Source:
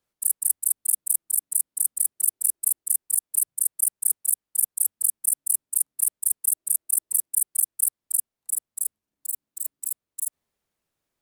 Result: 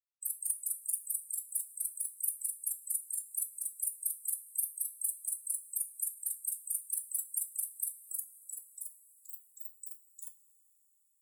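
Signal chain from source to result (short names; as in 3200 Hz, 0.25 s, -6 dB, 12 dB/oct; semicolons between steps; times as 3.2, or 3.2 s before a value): per-bin expansion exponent 3; two-slope reverb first 0.26 s, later 4.8 s, from -22 dB, DRR 5 dB; gain -5 dB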